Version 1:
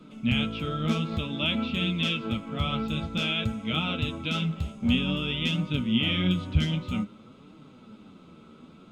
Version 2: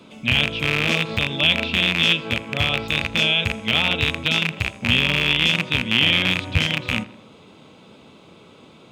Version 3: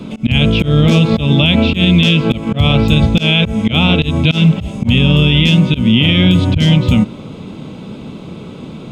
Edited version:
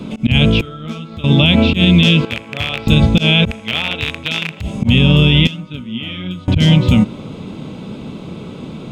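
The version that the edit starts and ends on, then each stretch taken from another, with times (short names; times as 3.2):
3
0.61–1.24 from 1
2.25–2.87 from 2
3.51–4.61 from 2
5.47–6.48 from 1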